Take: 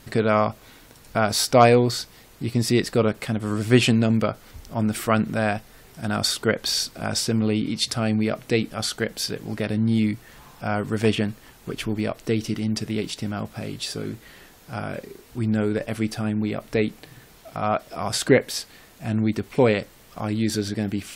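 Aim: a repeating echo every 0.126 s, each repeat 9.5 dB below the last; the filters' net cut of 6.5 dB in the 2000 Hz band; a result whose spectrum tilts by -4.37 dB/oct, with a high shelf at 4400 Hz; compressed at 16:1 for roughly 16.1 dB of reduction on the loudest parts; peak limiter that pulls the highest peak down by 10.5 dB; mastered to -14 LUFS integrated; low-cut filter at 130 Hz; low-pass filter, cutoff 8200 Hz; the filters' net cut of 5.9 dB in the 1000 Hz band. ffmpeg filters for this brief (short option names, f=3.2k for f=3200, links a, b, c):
-af "highpass=130,lowpass=8.2k,equalizer=f=1k:t=o:g=-8,equalizer=f=2k:t=o:g=-7.5,highshelf=f=4.4k:g=7,acompressor=threshold=-28dB:ratio=16,alimiter=level_in=1.5dB:limit=-24dB:level=0:latency=1,volume=-1.5dB,aecho=1:1:126|252|378|504:0.335|0.111|0.0365|0.012,volume=22dB"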